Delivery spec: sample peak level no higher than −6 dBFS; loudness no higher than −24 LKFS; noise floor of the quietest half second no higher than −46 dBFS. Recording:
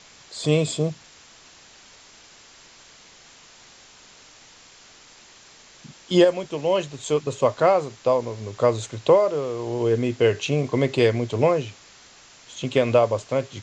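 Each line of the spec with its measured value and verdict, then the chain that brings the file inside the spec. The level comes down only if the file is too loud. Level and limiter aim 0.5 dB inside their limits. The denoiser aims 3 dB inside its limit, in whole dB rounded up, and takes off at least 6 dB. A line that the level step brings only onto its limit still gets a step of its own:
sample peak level −5.0 dBFS: out of spec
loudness −22.0 LKFS: out of spec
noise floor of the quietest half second −50 dBFS: in spec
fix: level −2.5 dB

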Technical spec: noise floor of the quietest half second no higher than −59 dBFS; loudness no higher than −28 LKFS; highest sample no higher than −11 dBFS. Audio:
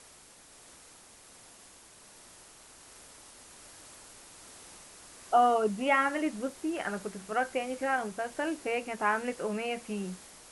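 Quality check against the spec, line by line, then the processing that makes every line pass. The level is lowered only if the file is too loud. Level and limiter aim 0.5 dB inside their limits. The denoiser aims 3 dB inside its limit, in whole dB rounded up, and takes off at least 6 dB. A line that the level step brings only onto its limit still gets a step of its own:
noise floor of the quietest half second −55 dBFS: out of spec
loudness −30.5 LKFS: in spec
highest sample −13.5 dBFS: in spec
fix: broadband denoise 7 dB, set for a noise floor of −55 dBFS

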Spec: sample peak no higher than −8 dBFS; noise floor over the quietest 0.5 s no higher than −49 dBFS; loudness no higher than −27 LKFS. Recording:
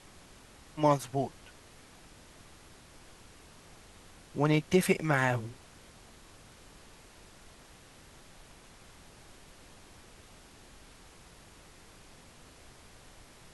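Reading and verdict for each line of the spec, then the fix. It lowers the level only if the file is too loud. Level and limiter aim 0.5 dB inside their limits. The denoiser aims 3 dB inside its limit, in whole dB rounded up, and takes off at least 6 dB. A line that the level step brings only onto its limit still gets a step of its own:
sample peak −11.5 dBFS: in spec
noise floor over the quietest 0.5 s −55 dBFS: in spec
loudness −29.5 LKFS: in spec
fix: no processing needed

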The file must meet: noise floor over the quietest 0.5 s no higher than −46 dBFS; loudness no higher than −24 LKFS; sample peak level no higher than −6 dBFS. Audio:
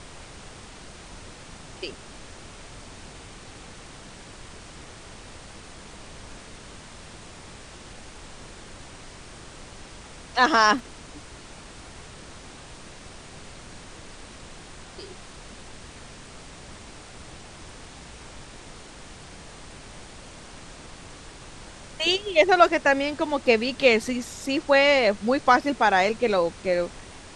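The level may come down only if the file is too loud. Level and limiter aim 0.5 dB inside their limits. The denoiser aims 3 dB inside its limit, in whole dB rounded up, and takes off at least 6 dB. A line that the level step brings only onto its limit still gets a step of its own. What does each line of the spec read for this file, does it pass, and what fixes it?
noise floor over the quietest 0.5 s −44 dBFS: out of spec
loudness −21.5 LKFS: out of spec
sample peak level −3.0 dBFS: out of spec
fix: level −3 dB
brickwall limiter −6.5 dBFS

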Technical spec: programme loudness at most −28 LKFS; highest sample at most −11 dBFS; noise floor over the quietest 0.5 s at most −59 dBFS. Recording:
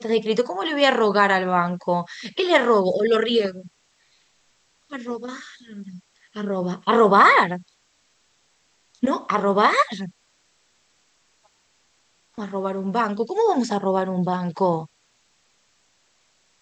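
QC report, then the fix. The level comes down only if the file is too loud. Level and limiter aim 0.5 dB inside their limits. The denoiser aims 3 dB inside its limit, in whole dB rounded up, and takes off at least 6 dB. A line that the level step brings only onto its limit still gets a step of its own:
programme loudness −20.5 LKFS: out of spec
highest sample −3.0 dBFS: out of spec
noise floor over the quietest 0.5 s −64 dBFS: in spec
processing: level −8 dB
brickwall limiter −11.5 dBFS

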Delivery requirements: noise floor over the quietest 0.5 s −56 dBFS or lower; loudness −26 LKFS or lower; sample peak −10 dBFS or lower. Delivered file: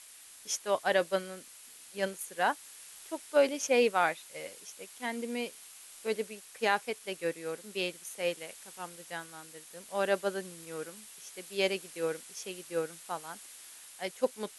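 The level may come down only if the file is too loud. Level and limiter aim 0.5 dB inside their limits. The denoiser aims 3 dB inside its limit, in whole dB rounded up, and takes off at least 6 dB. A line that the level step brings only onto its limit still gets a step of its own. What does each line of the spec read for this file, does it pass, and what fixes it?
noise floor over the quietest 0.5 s −52 dBFS: out of spec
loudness −33.5 LKFS: in spec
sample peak −13.0 dBFS: in spec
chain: broadband denoise 7 dB, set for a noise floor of −52 dBFS

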